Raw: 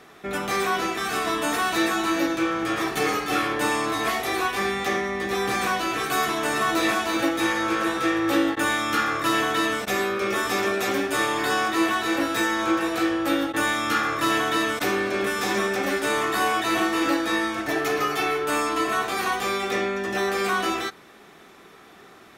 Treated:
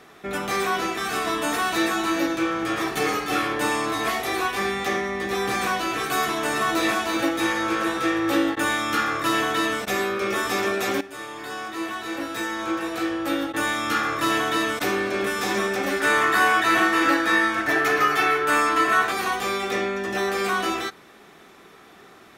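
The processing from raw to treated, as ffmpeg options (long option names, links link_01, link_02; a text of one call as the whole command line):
ffmpeg -i in.wav -filter_complex "[0:a]asettb=1/sr,asplit=3[link_01][link_02][link_03];[link_01]atrim=end=16.004[link_04];[link_02]atrim=start=16:end=19.12,asetpts=PTS-STARTPTS,afade=type=in:duration=0.004:curve=qsin,afade=type=out:start_time=3.116:duration=0.004:curve=qsin,equalizer=frequency=1600:width=1.4:gain=8.5[link_05];[link_03]atrim=start=19.116[link_06];[link_04][link_05]acrossfade=duration=0.004:curve1=hsin:curve2=qsin[link_07];[link_07][link_06]acrossfade=duration=0.004:curve1=qsin:curve2=hsin,asplit=2[link_08][link_09];[link_08]atrim=end=11.01,asetpts=PTS-STARTPTS,afade=type=out:start_time=11.006:duration=0.004:curve=hsin:silence=0.188365[link_10];[link_09]atrim=start=11.01,asetpts=PTS-STARTPTS,afade=type=in:duration=3.09:silence=0.188365[link_11];[link_10][link_11]concat=n=2:v=0:a=1" out.wav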